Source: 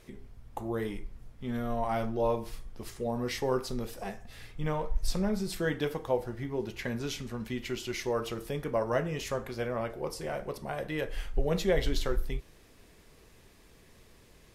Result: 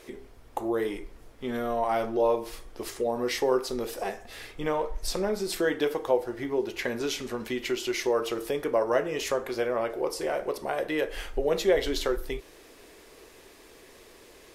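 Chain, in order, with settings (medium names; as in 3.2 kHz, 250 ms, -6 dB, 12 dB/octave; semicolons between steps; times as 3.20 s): resonant low shelf 240 Hz -11 dB, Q 1.5; in parallel at +1.5 dB: compression, threshold -37 dBFS, peak gain reduction 16 dB; on the sum: trim +1 dB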